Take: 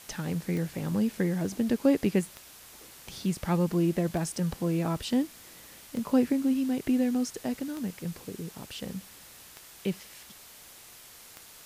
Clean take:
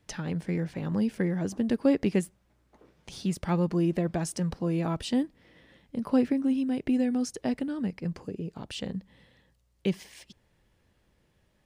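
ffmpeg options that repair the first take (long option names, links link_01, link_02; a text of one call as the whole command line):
ffmpeg -i in.wav -af "adeclick=threshold=4,afwtdn=0.0035,asetnsamples=nb_out_samples=441:pad=0,asendcmd='7.44 volume volume 3dB',volume=0dB" out.wav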